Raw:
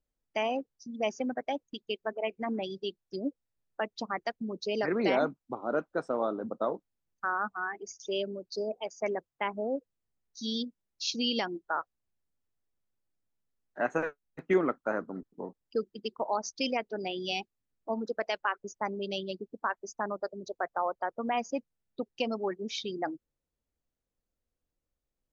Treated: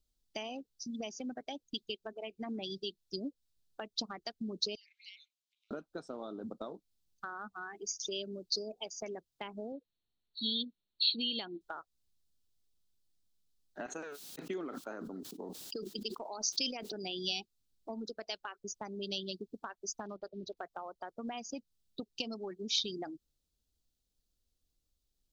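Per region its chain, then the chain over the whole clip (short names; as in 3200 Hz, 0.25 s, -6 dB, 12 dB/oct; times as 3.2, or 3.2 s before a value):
4.75–5.71 compressor 4:1, threshold -38 dBFS + rippled Chebyshev high-pass 2100 Hz, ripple 3 dB + high shelf 5600 Hz -11.5 dB
9.72–11.61 brick-wall FIR low-pass 4500 Hz + low shelf 120 Hz -10 dB
13.86–16.92 HPF 260 Hz + sustainer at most 47 dB/s
20–20.57 block floating point 7-bit + air absorption 250 m
whole clip: bell 430 Hz +3 dB 0.31 oct; compressor 5:1, threshold -36 dBFS; ten-band EQ 125 Hz -5 dB, 250 Hz -3 dB, 500 Hz -10 dB, 1000 Hz -8 dB, 2000 Hz -12 dB, 4000 Hz +7 dB; gain +6.5 dB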